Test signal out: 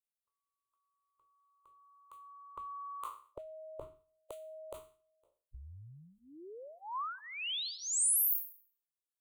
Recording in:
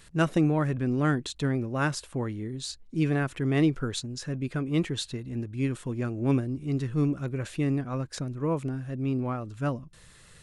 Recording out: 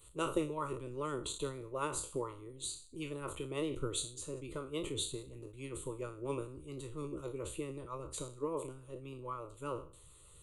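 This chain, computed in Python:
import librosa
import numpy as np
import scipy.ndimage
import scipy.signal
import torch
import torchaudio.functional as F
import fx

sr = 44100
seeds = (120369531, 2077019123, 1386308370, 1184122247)

y = fx.spec_trails(x, sr, decay_s=0.48)
y = fx.peak_eq(y, sr, hz=2100.0, db=-12.5, octaves=0.92)
y = fx.hpss(y, sr, part='harmonic', gain_db=-15)
y = fx.peak_eq(y, sr, hz=8400.0, db=6.5, octaves=1.1)
y = fx.fixed_phaser(y, sr, hz=1100.0, stages=8)
y = fx.sustainer(y, sr, db_per_s=140.0)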